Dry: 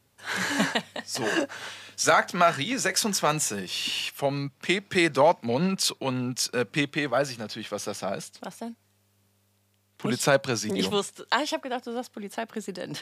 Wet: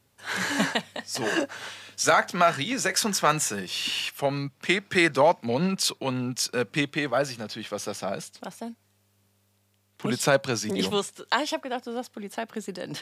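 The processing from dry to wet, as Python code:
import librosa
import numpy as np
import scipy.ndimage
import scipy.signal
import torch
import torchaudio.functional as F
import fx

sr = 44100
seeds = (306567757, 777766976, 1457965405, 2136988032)

y = fx.dynamic_eq(x, sr, hz=1500.0, q=1.6, threshold_db=-40.0, ratio=4.0, max_db=6, at=(2.9, 5.11))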